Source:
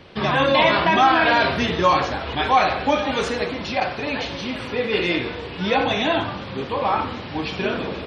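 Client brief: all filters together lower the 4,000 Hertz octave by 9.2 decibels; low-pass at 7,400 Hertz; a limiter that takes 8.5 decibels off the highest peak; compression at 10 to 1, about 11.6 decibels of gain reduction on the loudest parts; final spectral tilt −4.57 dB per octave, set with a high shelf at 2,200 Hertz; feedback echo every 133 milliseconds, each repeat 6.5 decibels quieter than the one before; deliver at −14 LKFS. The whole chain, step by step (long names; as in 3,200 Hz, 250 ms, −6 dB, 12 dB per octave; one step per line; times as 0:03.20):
low-pass filter 7,400 Hz
high-shelf EQ 2,200 Hz −8 dB
parametric band 4,000 Hz −4.5 dB
downward compressor 10 to 1, threshold −25 dBFS
brickwall limiter −24.5 dBFS
repeating echo 133 ms, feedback 47%, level −6.5 dB
level +18 dB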